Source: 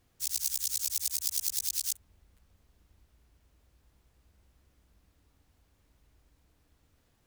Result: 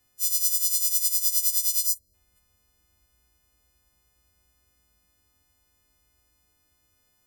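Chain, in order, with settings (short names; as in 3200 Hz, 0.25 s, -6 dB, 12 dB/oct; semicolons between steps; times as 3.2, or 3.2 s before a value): frequency quantiser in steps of 3 st; spectral gain 1.86–2.14, 660–3700 Hz -21 dB; gain -4.5 dB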